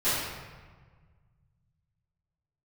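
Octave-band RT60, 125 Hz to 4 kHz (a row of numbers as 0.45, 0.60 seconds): 3.1, 2.0, 1.5, 1.5, 1.3, 0.95 seconds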